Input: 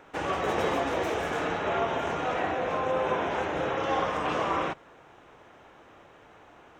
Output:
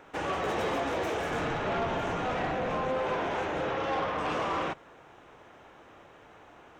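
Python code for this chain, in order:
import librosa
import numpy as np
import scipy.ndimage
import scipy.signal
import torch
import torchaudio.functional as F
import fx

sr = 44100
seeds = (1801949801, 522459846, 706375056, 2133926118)

y = fx.octave_divider(x, sr, octaves=1, level_db=1.0, at=(1.31, 2.94))
y = fx.lowpass(y, sr, hz=fx.line((3.62, 8000.0), (4.17, 3500.0)), slope=12, at=(3.62, 4.17), fade=0.02)
y = 10.0 ** (-24.5 / 20.0) * np.tanh(y / 10.0 ** (-24.5 / 20.0))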